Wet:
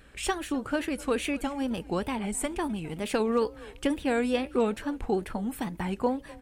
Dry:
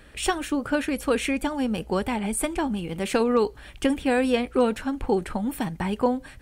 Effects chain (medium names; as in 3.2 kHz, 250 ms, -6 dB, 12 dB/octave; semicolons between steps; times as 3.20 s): frequency-shifting echo 262 ms, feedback 31%, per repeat +30 Hz, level -21 dB; wow and flutter 120 cents; trim -4.5 dB